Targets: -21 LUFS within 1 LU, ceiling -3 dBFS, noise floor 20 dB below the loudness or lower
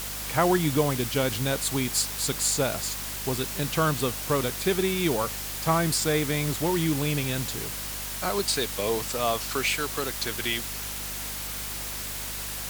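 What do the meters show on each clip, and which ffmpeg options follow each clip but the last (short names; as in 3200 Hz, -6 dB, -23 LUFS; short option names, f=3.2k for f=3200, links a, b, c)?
hum 50 Hz; harmonics up to 250 Hz; hum level -40 dBFS; noise floor -34 dBFS; noise floor target -47 dBFS; loudness -26.5 LUFS; peak -7.5 dBFS; loudness target -21.0 LUFS
-> -af "bandreject=f=50:t=h:w=6,bandreject=f=100:t=h:w=6,bandreject=f=150:t=h:w=6,bandreject=f=200:t=h:w=6,bandreject=f=250:t=h:w=6"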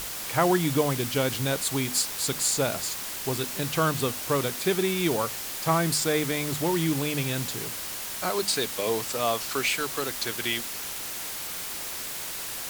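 hum none; noise floor -35 dBFS; noise floor target -47 dBFS
-> -af "afftdn=nr=12:nf=-35"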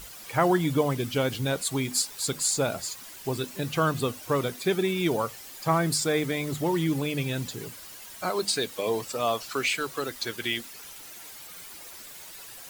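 noise floor -45 dBFS; noise floor target -48 dBFS
-> -af "afftdn=nr=6:nf=-45"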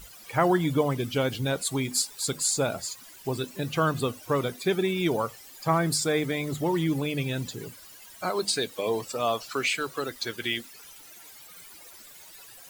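noise floor -49 dBFS; loudness -27.5 LUFS; peak -8.0 dBFS; loudness target -21.0 LUFS
-> -af "volume=6.5dB,alimiter=limit=-3dB:level=0:latency=1"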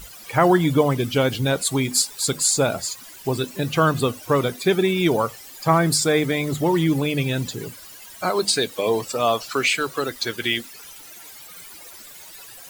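loudness -21.5 LUFS; peak -3.0 dBFS; noise floor -42 dBFS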